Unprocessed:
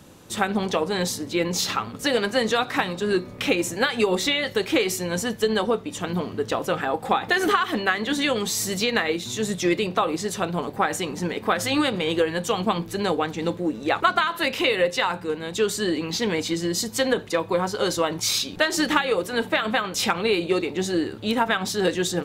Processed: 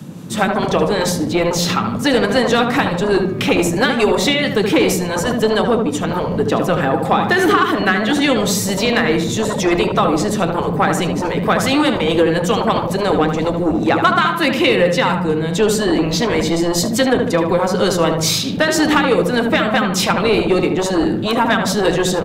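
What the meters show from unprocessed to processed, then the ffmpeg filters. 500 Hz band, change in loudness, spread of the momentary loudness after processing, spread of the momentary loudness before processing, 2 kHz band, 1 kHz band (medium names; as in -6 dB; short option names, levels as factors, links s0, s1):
+8.0 dB, +8.0 dB, 4 LU, 5 LU, +6.5 dB, +7.5 dB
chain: -filter_complex "[0:a]highpass=f=150:w=0.5412,highpass=f=150:w=1.3066,asplit=2[s0][s1];[s1]adelay=75,lowpass=f=2000:p=1,volume=0.531,asplit=2[s2][s3];[s3]adelay=75,lowpass=f=2000:p=1,volume=0.49,asplit=2[s4][s5];[s5]adelay=75,lowpass=f=2000:p=1,volume=0.49,asplit=2[s6][s7];[s7]adelay=75,lowpass=f=2000:p=1,volume=0.49,asplit=2[s8][s9];[s9]adelay=75,lowpass=f=2000:p=1,volume=0.49,asplit=2[s10][s11];[s11]adelay=75,lowpass=f=2000:p=1,volume=0.49[s12];[s0][s2][s4][s6][s8][s10][s12]amix=inputs=7:normalize=0,acrossover=split=190|2100[s13][s14][s15];[s13]aeval=exprs='0.0531*sin(PI/2*5.62*val(0)/0.0531)':c=same[s16];[s15]tremolo=f=4.7:d=0.31[s17];[s16][s14][s17]amix=inputs=3:normalize=0,acontrast=73"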